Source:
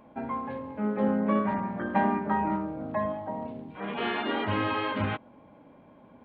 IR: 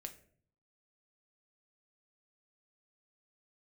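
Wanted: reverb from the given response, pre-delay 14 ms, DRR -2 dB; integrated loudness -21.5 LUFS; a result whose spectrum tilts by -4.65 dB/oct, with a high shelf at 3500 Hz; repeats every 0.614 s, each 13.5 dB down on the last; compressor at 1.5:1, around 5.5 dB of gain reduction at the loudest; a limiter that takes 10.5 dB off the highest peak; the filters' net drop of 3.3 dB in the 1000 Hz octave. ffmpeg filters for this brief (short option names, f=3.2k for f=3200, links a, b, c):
-filter_complex "[0:a]equalizer=f=1k:t=o:g=-4.5,highshelf=f=3.5k:g=7.5,acompressor=threshold=-37dB:ratio=1.5,alimiter=level_in=6dB:limit=-24dB:level=0:latency=1,volume=-6dB,aecho=1:1:614|1228:0.211|0.0444,asplit=2[a][b];[1:a]atrim=start_sample=2205,adelay=14[c];[b][c]afir=irnorm=-1:irlink=0,volume=6.5dB[d];[a][d]amix=inputs=2:normalize=0,volume=12dB"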